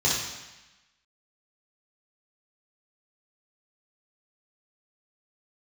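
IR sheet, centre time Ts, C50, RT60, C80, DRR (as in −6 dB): 65 ms, 0.5 dB, 1.0 s, 4.0 dB, −6.5 dB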